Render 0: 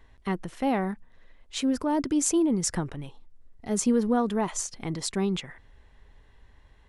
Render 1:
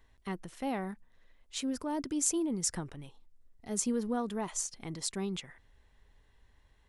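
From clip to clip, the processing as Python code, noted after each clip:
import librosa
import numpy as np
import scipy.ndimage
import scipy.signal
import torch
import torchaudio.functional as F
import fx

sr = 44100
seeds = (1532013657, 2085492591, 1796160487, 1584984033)

y = fx.high_shelf(x, sr, hz=4300.0, db=8.0)
y = y * librosa.db_to_amplitude(-9.0)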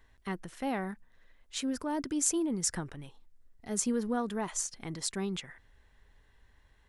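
y = fx.peak_eq(x, sr, hz=1600.0, db=4.5, octaves=0.61)
y = y * librosa.db_to_amplitude(1.0)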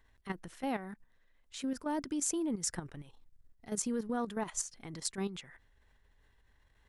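y = fx.level_steps(x, sr, step_db=11)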